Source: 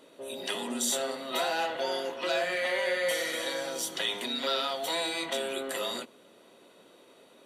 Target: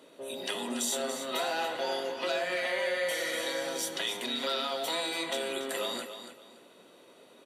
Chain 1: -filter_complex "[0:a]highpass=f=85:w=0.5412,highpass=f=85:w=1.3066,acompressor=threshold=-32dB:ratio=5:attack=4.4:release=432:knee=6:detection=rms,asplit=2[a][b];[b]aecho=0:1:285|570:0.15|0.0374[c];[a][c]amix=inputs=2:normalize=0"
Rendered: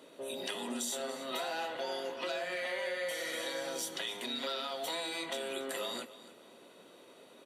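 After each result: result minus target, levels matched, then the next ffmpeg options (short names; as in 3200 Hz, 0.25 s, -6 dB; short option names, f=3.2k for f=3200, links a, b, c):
compressor: peak gain reduction +6 dB; echo-to-direct -6.5 dB
-filter_complex "[0:a]highpass=f=85:w=0.5412,highpass=f=85:w=1.3066,acompressor=threshold=-24dB:ratio=5:attack=4.4:release=432:knee=6:detection=rms,asplit=2[a][b];[b]aecho=0:1:285|570:0.15|0.0374[c];[a][c]amix=inputs=2:normalize=0"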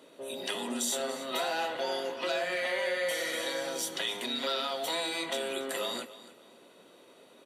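echo-to-direct -6.5 dB
-filter_complex "[0:a]highpass=f=85:w=0.5412,highpass=f=85:w=1.3066,acompressor=threshold=-24dB:ratio=5:attack=4.4:release=432:knee=6:detection=rms,asplit=2[a][b];[b]aecho=0:1:285|570|855:0.316|0.0791|0.0198[c];[a][c]amix=inputs=2:normalize=0"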